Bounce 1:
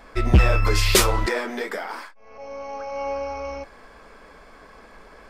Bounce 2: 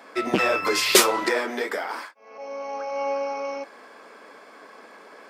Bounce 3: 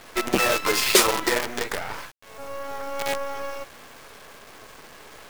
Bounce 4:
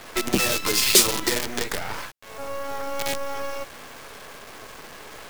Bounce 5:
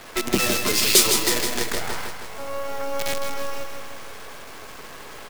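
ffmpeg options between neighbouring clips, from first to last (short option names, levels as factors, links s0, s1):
-af "highpass=f=240:w=0.5412,highpass=f=240:w=1.3066,volume=1.19"
-filter_complex "[0:a]asplit=2[s0][s1];[s1]acompressor=threshold=0.0316:ratio=10,volume=0.841[s2];[s0][s2]amix=inputs=2:normalize=0,acrusher=bits=4:dc=4:mix=0:aa=0.000001,volume=0.794"
-filter_complex "[0:a]acrossover=split=310|3000[s0][s1][s2];[s1]acompressor=threshold=0.0224:ratio=4[s3];[s0][s3][s2]amix=inputs=3:normalize=0,volume=1.58"
-af "aecho=1:1:159|318|477|636|795|954|1113|1272:0.473|0.279|0.165|0.0972|0.0573|0.0338|0.02|0.0118"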